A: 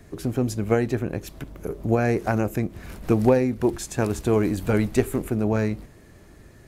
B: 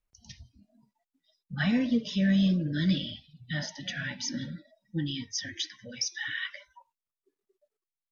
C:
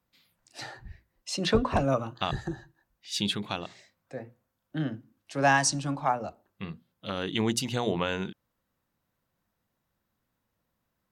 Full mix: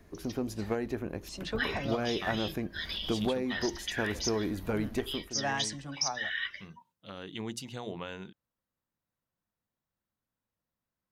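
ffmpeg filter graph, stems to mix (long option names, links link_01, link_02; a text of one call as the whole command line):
ffmpeg -i stem1.wav -i stem2.wav -i stem3.wav -filter_complex "[0:a]equalizer=frequency=125:width_type=o:width=0.33:gain=-10,equalizer=frequency=1000:width_type=o:width=0.33:gain=4,equalizer=frequency=8000:width_type=o:width=0.33:gain=-10,acompressor=threshold=-18dB:ratio=6,aeval=exprs='clip(val(0),-1,0.126)':channel_layout=same,volume=-8dB,afade=type=out:start_time=5.08:duration=0.22:silence=0.281838[link_01];[1:a]highpass=frequency=860:width=0.5412,highpass=frequency=860:width=1.3066,volume=0dB[link_02];[2:a]volume=-11dB[link_03];[link_01][link_02][link_03]amix=inputs=3:normalize=0" out.wav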